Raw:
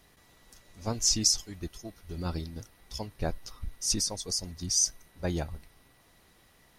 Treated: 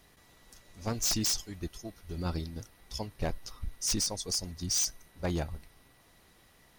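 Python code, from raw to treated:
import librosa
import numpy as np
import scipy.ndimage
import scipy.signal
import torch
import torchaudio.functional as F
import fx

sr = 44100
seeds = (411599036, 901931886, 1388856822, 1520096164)

y = 10.0 ** (-23.0 / 20.0) * (np.abs((x / 10.0 ** (-23.0 / 20.0) + 3.0) % 4.0 - 2.0) - 1.0)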